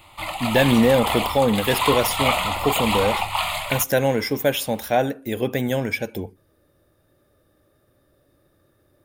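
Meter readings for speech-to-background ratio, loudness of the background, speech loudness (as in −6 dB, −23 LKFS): 2.0 dB, −24.0 LKFS, −22.0 LKFS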